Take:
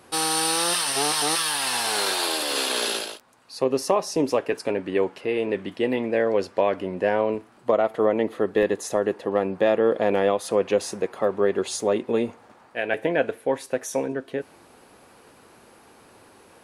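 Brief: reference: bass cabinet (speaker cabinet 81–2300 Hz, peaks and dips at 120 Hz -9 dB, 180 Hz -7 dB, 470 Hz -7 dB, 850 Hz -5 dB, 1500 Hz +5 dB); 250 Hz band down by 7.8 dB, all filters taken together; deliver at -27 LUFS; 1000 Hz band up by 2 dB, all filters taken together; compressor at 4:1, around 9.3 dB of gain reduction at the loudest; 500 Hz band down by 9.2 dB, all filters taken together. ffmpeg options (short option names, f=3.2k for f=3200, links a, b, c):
-af "equalizer=f=250:t=o:g=-5.5,equalizer=f=500:t=o:g=-7.5,equalizer=f=1k:t=o:g=7.5,acompressor=threshold=-28dB:ratio=4,highpass=f=81:w=0.5412,highpass=f=81:w=1.3066,equalizer=f=120:t=q:w=4:g=-9,equalizer=f=180:t=q:w=4:g=-7,equalizer=f=470:t=q:w=4:g=-7,equalizer=f=850:t=q:w=4:g=-5,equalizer=f=1.5k:t=q:w=4:g=5,lowpass=f=2.3k:w=0.5412,lowpass=f=2.3k:w=1.3066,volume=8dB"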